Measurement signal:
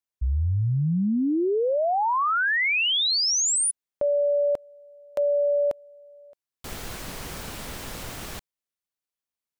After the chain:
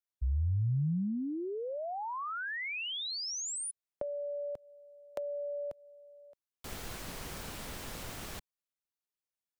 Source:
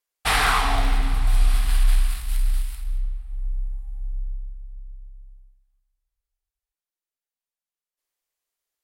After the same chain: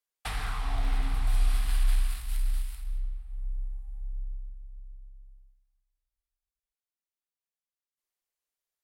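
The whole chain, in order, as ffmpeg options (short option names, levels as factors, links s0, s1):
-filter_complex "[0:a]acrossover=split=170[s0][s1];[s1]acompressor=threshold=0.0316:ratio=8:attack=19:release=392:knee=2.83:detection=peak[s2];[s0][s2]amix=inputs=2:normalize=0,volume=0.473"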